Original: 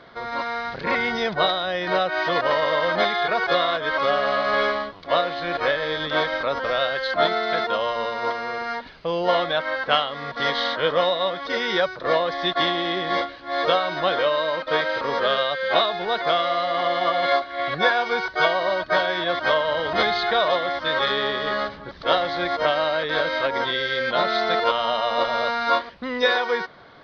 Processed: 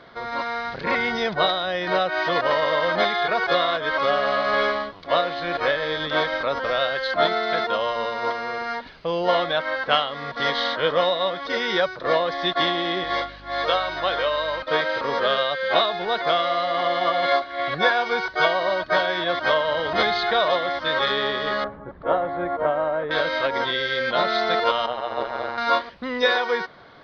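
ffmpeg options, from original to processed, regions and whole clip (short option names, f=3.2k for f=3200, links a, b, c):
-filter_complex "[0:a]asettb=1/sr,asplit=3[a][b][c];[a]atrim=end=13.044[d];[b]atrim=start=13.04:end=14.63,asetpts=PTS-STARTPTS,afade=t=in:d=0.004:c=qsin,afade=t=out:st=1.586:d=0.004:c=qsin,highpass=f=530:p=1,aeval=exprs='val(0)+0.00562*(sin(2*PI*50*n/s)+sin(2*PI*2*50*n/s)/2+sin(2*PI*3*50*n/s)/3+sin(2*PI*4*50*n/s)/4+sin(2*PI*5*50*n/s)/5)':c=same[e];[c]atrim=start=14.626[f];[d][e]acrossfade=d=0.004:c1=hsin:c2=qsin[g];[g][f]acrossfade=d=0.004:c1=qsin:c2=hsin,asettb=1/sr,asplit=3[h][i][j];[h]atrim=end=21.644[k];[i]atrim=start=21.64:end=23.11,asetpts=PTS-STARTPTS,afade=t=in:d=0.004:c=qsin,afade=t=out:st=1.466:d=0.004:c=qsin,lowpass=1.2k,aemphasis=mode=reproduction:type=50fm[l];[j]atrim=start=23.106[m];[k][l]acrossfade=d=0.004:c1=hsin:c2=qsin[n];[n][m]acrossfade=d=0.004:c1=qsin:c2=hsin,asettb=1/sr,asplit=3[o][p][q];[o]atrim=end=24.864[r];[p]atrim=start=24.86:end=25.58,asetpts=PTS-STARTPTS,afade=t=in:d=0.004:c=qsin,afade=t=out:st=0.716:d=0.004:c=qsin,tremolo=f=130:d=0.919,highshelf=f=2.8k:g=-12[s];[q]atrim=start=25.576[t];[r][s]acrossfade=d=0.004:c1=hsin:c2=qsin[u];[u][t]acrossfade=d=0.004:c1=qsin:c2=hsin"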